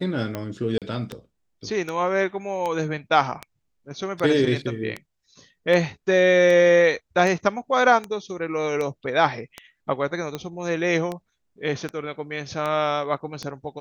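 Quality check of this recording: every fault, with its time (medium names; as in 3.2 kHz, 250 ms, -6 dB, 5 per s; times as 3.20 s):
tick 78 rpm -15 dBFS
0.78–0.82 s: dropout 37 ms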